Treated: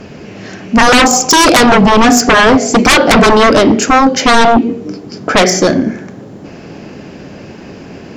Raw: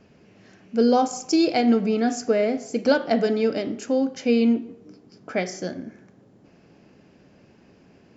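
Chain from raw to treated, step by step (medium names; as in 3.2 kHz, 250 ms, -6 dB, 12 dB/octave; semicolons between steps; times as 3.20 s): hum notches 60/120/180/240 Hz; sine folder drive 17 dB, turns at -6 dBFS; 2.48–3.28 s: short-mantissa float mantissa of 8-bit; trim +3 dB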